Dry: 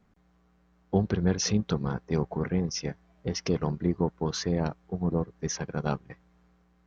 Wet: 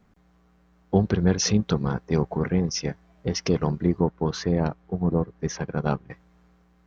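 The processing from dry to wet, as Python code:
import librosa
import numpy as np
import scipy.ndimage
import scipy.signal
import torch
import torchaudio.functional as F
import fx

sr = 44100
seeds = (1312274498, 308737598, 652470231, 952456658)

y = fx.lowpass(x, sr, hz=2800.0, slope=6, at=(4.0, 6.1))
y = y * 10.0 ** (4.5 / 20.0)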